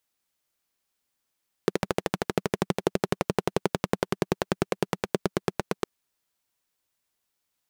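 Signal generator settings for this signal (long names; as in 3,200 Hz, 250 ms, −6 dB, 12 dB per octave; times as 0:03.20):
pulse-train model of a single-cylinder engine, changing speed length 4.16 s, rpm 1,600, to 1,000, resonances 190/380 Hz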